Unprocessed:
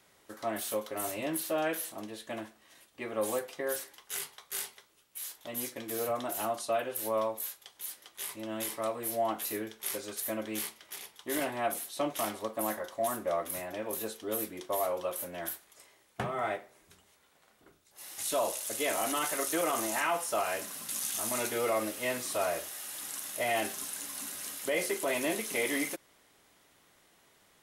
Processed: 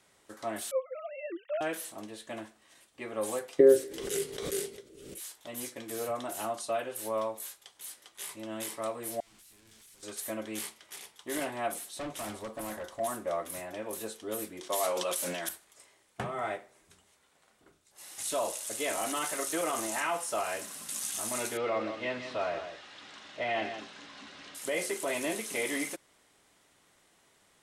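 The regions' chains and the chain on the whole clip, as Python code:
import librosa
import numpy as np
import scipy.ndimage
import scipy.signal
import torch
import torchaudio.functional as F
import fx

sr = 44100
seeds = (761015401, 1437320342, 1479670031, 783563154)

y = fx.chain(x, sr, fx.sine_speech(),
    fx.highpass(hz=300.0, slope=12), at=(0.71, 1.61))
y = fx.chain(y, sr, fx.low_shelf_res(hz=610.0, db=13.5, q=3.0),
    fx.pre_swell(db_per_s=49.0), at=(3.59, 5.2))
y = fx.chain(y, sr, fx.clip_1bit(),
    fx.tone_stack(knobs='6-0-2'),
    fx.tube_stage(drive_db=49.0, bias=0.7), at=(9.2, 10.03))
y = fx.chain(y, sr, fx.low_shelf(hz=130.0, db=11.0),
    fx.overload_stage(gain_db=33.5), at=(11.91, 13.0))
y = fx.chain(y, sr, fx.highpass(hz=130.0, slope=24),
    fx.peak_eq(hz=5400.0, db=11.0, octaves=2.7),
    fx.sustainer(db_per_s=26.0), at=(14.63, 15.49))
y = fx.chain(y, sr, fx.lowpass(hz=4200.0, slope=24),
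    fx.echo_single(ms=167, db=-9.0), at=(21.57, 24.55))
y = scipy.signal.sosfilt(scipy.signal.butter(2, 11000.0, 'lowpass', fs=sr, output='sos'), y)
y = fx.peak_eq(y, sr, hz=8200.0, db=4.5, octaves=0.48)
y = F.gain(torch.from_numpy(y), -1.5).numpy()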